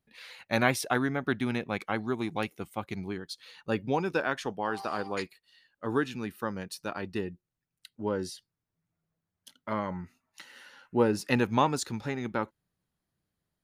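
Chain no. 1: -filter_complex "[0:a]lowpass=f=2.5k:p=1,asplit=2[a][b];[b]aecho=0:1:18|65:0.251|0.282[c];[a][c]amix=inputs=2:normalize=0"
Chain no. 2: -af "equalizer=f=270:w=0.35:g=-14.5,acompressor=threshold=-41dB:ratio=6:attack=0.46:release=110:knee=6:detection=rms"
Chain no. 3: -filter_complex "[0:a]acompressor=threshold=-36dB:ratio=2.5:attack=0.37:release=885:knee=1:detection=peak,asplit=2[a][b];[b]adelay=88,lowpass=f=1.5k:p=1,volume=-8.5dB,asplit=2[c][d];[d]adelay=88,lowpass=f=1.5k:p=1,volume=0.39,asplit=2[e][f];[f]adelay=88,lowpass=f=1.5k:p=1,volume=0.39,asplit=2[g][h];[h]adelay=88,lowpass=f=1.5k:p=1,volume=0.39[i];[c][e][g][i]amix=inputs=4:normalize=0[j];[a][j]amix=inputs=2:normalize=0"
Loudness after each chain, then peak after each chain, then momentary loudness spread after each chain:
-31.5, -50.0, -42.5 LUFS; -9.5, -33.5, -23.5 dBFS; 13, 9, 12 LU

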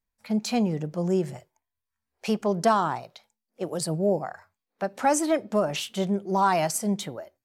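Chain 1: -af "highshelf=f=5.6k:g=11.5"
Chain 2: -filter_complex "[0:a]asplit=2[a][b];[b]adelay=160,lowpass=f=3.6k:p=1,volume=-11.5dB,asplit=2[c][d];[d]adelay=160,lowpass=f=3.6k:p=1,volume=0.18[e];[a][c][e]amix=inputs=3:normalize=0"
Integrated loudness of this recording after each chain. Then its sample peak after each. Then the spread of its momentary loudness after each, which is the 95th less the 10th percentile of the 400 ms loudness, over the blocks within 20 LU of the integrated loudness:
-25.0, -26.0 LUFS; -7.5, -10.5 dBFS; 13, 13 LU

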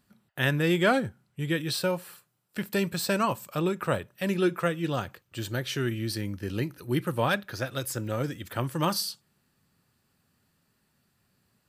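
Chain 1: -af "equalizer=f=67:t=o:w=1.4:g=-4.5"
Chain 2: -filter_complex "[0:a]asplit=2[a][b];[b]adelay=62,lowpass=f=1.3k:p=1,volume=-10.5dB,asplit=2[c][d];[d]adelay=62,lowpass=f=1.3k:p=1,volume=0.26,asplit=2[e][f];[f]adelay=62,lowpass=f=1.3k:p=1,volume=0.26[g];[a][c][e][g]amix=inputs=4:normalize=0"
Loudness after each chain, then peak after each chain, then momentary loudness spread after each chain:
-29.5, -29.0 LUFS; -9.5, -9.5 dBFS; 10, 10 LU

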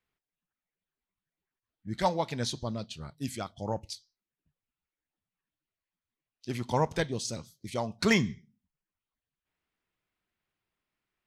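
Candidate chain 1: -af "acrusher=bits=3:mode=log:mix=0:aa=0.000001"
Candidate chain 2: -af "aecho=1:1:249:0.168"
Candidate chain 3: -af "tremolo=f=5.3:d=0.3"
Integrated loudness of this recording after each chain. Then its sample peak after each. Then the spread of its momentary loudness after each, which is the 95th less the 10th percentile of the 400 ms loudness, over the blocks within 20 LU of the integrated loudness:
-32.0, -32.0, -33.0 LUFS; -11.5, -11.0, -11.5 dBFS; 16, 16, 17 LU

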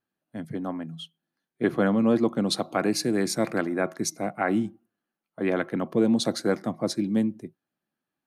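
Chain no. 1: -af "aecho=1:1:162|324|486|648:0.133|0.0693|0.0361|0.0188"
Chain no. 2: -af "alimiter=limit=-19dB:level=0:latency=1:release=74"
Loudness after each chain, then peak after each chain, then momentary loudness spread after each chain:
-26.0, -30.0 LUFS; -11.0, -19.0 dBFS; 16, 10 LU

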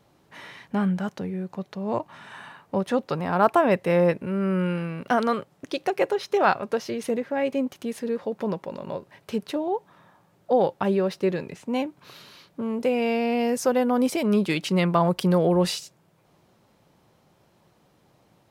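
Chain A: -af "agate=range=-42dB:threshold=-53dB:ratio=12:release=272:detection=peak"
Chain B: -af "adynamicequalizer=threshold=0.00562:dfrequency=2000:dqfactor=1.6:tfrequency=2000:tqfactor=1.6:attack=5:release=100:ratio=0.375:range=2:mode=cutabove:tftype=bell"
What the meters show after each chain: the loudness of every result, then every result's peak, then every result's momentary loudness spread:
-25.0, -25.5 LUFS; -5.0, -6.0 dBFS; 12, 12 LU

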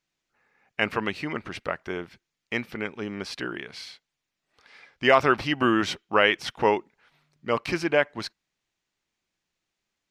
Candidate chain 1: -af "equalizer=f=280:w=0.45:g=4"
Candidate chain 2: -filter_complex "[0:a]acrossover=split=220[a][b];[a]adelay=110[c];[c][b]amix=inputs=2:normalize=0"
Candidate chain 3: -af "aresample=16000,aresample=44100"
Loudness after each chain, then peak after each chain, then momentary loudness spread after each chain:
-23.5, -26.5, -26.0 LUFS; -2.5, -6.0, -4.5 dBFS; 17, 16, 16 LU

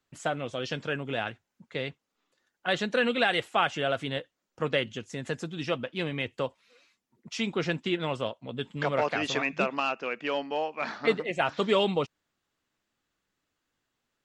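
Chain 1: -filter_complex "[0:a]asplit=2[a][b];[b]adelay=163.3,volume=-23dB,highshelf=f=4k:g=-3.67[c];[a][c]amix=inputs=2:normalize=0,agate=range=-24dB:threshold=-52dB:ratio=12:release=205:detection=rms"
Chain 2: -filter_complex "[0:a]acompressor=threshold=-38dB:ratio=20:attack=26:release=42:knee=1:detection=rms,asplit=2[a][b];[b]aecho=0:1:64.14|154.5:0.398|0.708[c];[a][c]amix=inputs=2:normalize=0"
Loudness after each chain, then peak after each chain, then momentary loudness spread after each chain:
-30.0, -38.0 LUFS; -10.0, -20.5 dBFS; 10, 7 LU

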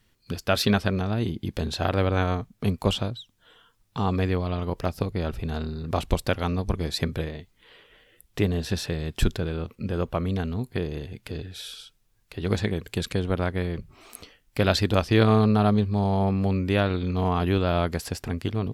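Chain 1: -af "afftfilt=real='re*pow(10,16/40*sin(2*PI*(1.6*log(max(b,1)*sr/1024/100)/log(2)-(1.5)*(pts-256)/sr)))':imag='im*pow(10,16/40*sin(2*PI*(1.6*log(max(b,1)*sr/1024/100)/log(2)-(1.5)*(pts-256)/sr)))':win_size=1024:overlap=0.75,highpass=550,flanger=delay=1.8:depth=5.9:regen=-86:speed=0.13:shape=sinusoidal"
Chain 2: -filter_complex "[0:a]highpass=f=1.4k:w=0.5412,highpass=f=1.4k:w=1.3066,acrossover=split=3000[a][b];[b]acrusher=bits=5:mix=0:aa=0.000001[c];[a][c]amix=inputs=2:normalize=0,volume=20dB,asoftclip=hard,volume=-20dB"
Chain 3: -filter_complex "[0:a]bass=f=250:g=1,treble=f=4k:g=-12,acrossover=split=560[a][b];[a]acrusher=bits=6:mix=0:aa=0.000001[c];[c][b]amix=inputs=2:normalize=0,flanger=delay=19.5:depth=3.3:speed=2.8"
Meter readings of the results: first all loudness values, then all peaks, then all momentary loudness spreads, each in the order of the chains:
-33.5, -36.5, -28.0 LUFS; -6.5, -20.0, -8.5 dBFS; 17, 16, 13 LU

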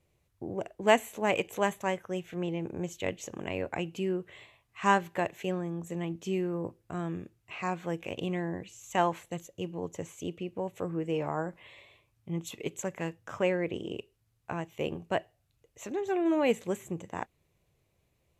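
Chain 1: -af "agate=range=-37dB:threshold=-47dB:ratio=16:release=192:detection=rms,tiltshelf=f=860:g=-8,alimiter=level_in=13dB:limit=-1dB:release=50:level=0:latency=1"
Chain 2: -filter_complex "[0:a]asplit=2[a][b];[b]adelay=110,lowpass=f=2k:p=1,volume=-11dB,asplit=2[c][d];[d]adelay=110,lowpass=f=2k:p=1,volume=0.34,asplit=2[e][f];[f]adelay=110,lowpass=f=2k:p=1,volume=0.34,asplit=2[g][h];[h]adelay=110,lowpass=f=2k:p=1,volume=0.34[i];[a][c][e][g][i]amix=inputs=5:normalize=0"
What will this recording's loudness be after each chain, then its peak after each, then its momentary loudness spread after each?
-22.0, -32.5 LUFS; -1.0, -9.0 dBFS; 12, 13 LU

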